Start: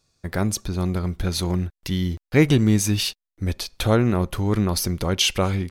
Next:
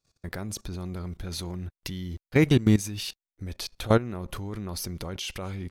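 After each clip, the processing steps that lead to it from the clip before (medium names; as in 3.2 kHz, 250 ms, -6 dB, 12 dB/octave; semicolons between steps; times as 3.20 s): level held to a coarse grid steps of 17 dB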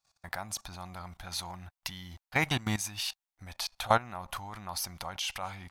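resonant low shelf 570 Hz -11 dB, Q 3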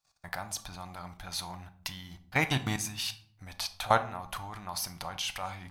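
reverberation RT60 0.55 s, pre-delay 7 ms, DRR 9 dB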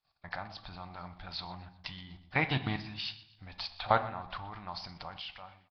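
fade out at the end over 0.85 s; feedback delay 124 ms, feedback 40%, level -18 dB; trim -2 dB; Nellymoser 22 kbps 11.025 kHz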